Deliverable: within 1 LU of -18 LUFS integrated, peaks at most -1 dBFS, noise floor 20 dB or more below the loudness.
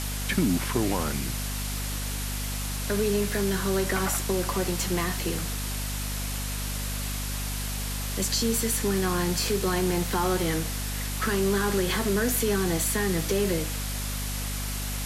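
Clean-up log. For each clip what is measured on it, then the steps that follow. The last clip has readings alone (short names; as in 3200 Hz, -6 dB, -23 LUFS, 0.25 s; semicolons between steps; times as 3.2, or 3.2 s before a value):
hum 50 Hz; harmonics up to 250 Hz; hum level -30 dBFS; noise floor -31 dBFS; noise floor target -48 dBFS; loudness -27.5 LUFS; peak -13.0 dBFS; loudness target -18.0 LUFS
-> notches 50/100/150/200/250 Hz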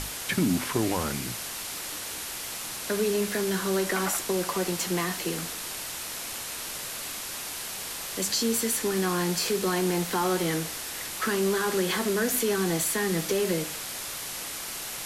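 hum none; noise floor -36 dBFS; noise floor target -48 dBFS
-> denoiser 12 dB, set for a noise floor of -36 dBFS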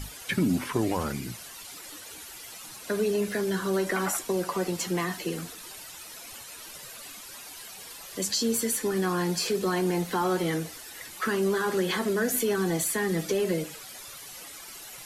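noise floor -44 dBFS; noise floor target -48 dBFS
-> denoiser 6 dB, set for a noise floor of -44 dBFS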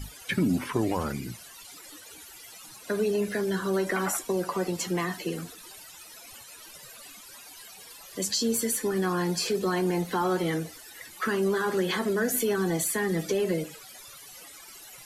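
noise floor -48 dBFS; loudness -28.0 LUFS; peak -13.0 dBFS; loudness target -18.0 LUFS
-> gain +10 dB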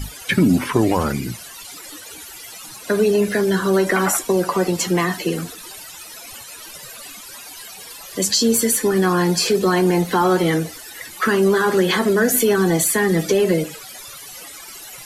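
loudness -18.0 LUFS; peak -3.0 dBFS; noise floor -38 dBFS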